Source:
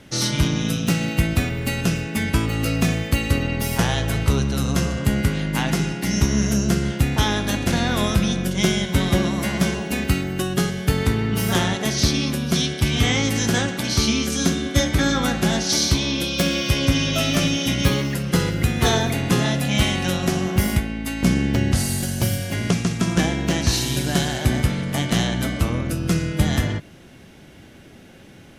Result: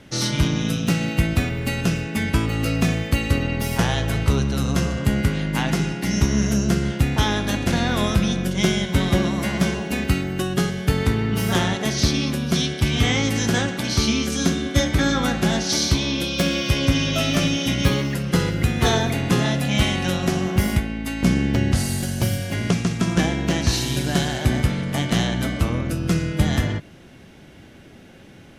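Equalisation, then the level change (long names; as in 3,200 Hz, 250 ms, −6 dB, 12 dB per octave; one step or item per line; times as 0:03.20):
high-shelf EQ 6,700 Hz −5 dB
0.0 dB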